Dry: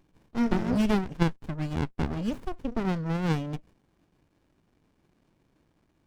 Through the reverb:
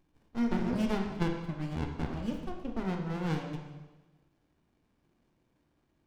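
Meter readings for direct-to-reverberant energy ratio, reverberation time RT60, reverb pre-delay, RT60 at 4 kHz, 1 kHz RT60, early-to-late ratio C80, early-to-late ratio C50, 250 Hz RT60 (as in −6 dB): 2.0 dB, 1.2 s, 6 ms, 1.1 s, 1.2 s, 6.5 dB, 5.0 dB, 1.2 s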